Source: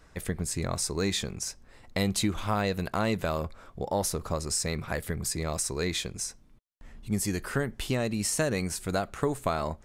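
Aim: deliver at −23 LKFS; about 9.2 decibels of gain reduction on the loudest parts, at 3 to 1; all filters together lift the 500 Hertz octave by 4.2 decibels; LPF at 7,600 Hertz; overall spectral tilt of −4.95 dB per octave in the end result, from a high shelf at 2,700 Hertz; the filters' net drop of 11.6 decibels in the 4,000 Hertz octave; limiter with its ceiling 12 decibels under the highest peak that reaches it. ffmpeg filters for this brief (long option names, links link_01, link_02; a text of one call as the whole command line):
ffmpeg -i in.wav -af "lowpass=7600,equalizer=frequency=500:width_type=o:gain=5.5,highshelf=frequency=2700:gain=-6.5,equalizer=frequency=4000:width_type=o:gain=-8.5,acompressor=threshold=-33dB:ratio=3,volume=18.5dB,alimiter=limit=-12.5dB:level=0:latency=1" out.wav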